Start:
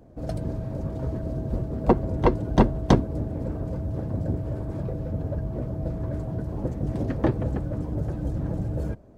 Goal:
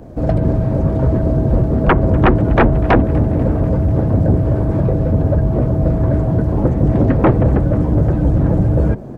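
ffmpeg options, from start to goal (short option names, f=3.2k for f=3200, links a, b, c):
-filter_complex "[0:a]aeval=exprs='0.708*sin(PI/2*5.01*val(0)/0.708)':c=same,acrossover=split=2700[a][b];[b]acompressor=threshold=-55dB:ratio=4:attack=1:release=60[c];[a][c]amix=inputs=2:normalize=0,asplit=6[d][e][f][g][h][i];[e]adelay=245,afreqshift=67,volume=-21.5dB[j];[f]adelay=490,afreqshift=134,volume=-25.7dB[k];[g]adelay=735,afreqshift=201,volume=-29.8dB[l];[h]adelay=980,afreqshift=268,volume=-34dB[m];[i]adelay=1225,afreqshift=335,volume=-38.1dB[n];[d][j][k][l][m][n]amix=inputs=6:normalize=0,volume=-2.5dB"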